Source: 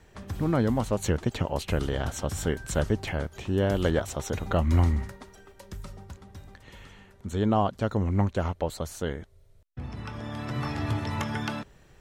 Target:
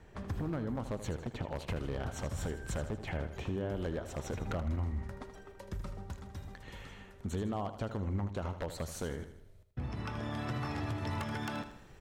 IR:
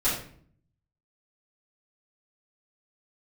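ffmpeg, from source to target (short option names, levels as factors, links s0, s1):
-af "asetnsamples=n=441:p=0,asendcmd='6.1 highshelf g -2.5',highshelf=f=2900:g=-9.5,acompressor=threshold=0.0251:ratio=12,aeval=exprs='0.0376*(abs(mod(val(0)/0.0376+3,4)-2)-1)':c=same,aecho=1:1:79|158|237|316|395:0.282|0.138|0.0677|0.0332|0.0162"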